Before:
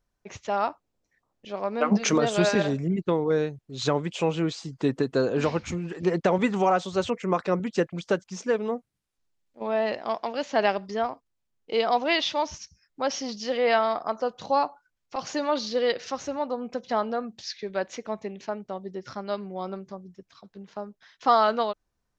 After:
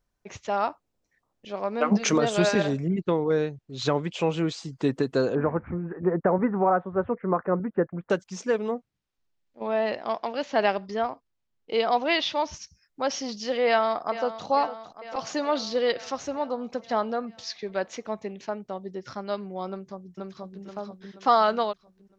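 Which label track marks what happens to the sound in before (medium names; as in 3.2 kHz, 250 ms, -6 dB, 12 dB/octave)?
2.800000	4.320000	low-pass 6.3 kHz
5.350000	8.100000	steep low-pass 1.7 kHz
8.720000	12.530000	low-pass 5.7 kHz
13.660000	14.470000	echo throw 450 ms, feedback 70%, level -13 dB
19.690000	20.630000	echo throw 480 ms, feedback 45%, level -1 dB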